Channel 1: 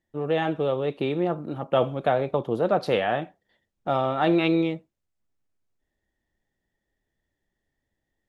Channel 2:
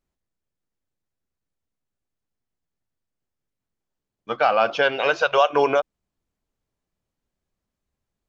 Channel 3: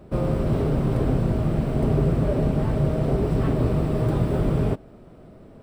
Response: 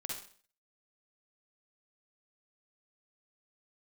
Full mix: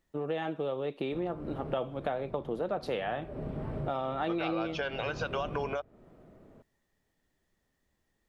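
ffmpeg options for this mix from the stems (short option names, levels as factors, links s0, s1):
-filter_complex "[0:a]highpass=140,volume=1.06,asplit=2[s0][s1];[1:a]alimiter=limit=0.141:level=0:latency=1:release=294,volume=1.41[s2];[2:a]bass=f=250:g=-3,treble=f=4000:g=-13,bandreject=f=50:t=h:w=6,bandreject=f=100:t=h:w=6,adelay=1000,volume=0.398[s3];[s1]apad=whole_len=291985[s4];[s3][s4]sidechaincompress=threshold=0.0501:ratio=8:attack=8.3:release=862[s5];[s0][s2][s5]amix=inputs=3:normalize=0,acompressor=threshold=0.0224:ratio=3"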